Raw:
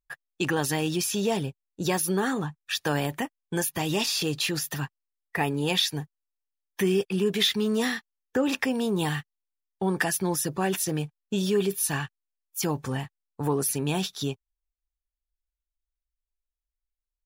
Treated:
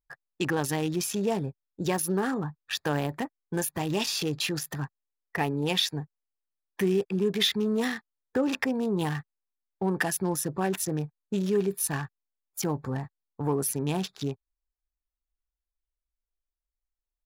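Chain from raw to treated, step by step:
adaptive Wiener filter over 15 samples
level −1 dB

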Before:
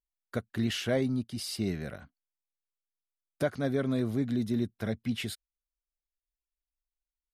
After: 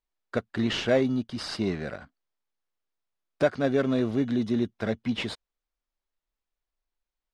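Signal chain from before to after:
parametric band 96 Hz −9.5 dB 2.8 octaves
in parallel at −10 dB: decimation without filtering 14×
on the sum: high-frequency loss of the air 110 metres
level +6.5 dB

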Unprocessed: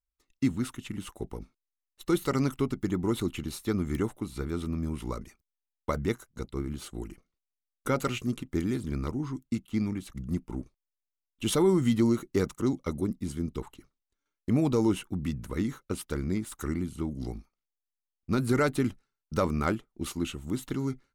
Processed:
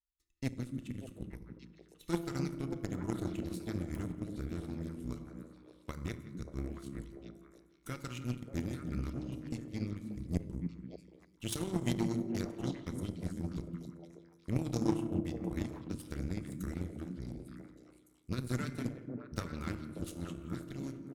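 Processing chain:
in parallel at −2.5 dB: brickwall limiter −24.5 dBFS, peak gain reduction 10 dB
on the sum: transient designer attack +1 dB, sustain −11 dB
guitar amp tone stack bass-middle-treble 6-0-2
far-end echo of a speakerphone 170 ms, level −10 dB
on a send at −4 dB: convolution reverb RT60 1.8 s, pre-delay 3 ms
on the sum: harmonic generator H 3 −12 dB, 8 −33 dB, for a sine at −28 dBFS
echo through a band-pass that steps 292 ms, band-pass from 200 Hz, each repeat 1.4 octaves, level −1.5 dB
level +11 dB

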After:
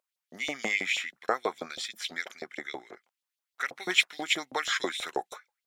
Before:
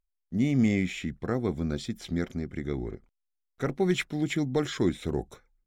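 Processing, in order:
auto-filter high-pass saw up 6.2 Hz 580–4,200 Hz
0:04.70–0:05.10: multiband upward and downward compressor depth 70%
level +5 dB

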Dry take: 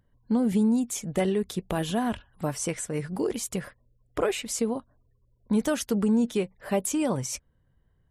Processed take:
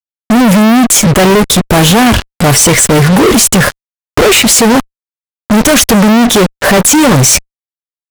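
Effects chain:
transient designer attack −4 dB, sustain 0 dB
fuzz pedal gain 50 dB, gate −47 dBFS
level +8.5 dB

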